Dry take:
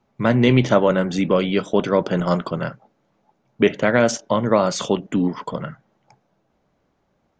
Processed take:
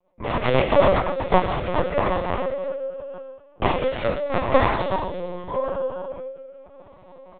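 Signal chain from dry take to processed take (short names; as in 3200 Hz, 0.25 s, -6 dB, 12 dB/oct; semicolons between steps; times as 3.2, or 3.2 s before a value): spectral trails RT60 1.64 s; bell 250 Hz -9 dB 0.71 oct; notch 1600 Hz, Q 5.9; comb 5.6 ms, depth 69%; de-hum 90.13 Hz, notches 2; reverse; upward compressor, threshold -27 dBFS; reverse; added harmonics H 2 -33 dB, 6 -20 dB, 7 -10 dB, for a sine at -0.5 dBFS; resonator 65 Hz, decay 0.4 s, harmonics all, mix 80%; small resonant body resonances 540/930 Hz, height 15 dB, ringing for 25 ms; rotary speaker horn 8 Hz, later 0.8 Hz, at 1.17; LPC vocoder at 8 kHz pitch kept; gain -3 dB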